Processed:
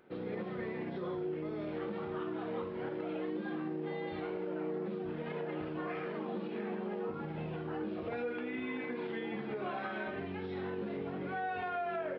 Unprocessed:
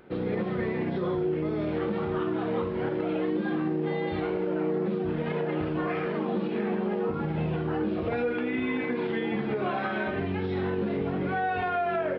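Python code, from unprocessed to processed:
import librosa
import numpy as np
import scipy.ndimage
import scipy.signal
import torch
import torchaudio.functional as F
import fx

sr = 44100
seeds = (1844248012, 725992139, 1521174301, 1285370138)

y = fx.low_shelf(x, sr, hz=110.0, db=-11.0)
y = y * librosa.db_to_amplitude(-8.5)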